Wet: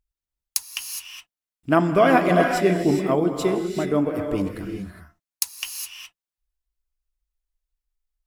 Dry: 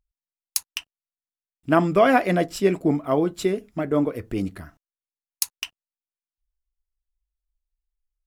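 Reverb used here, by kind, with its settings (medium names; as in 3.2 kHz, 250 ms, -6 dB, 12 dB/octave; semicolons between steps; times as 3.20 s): gated-style reverb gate 440 ms rising, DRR 3.5 dB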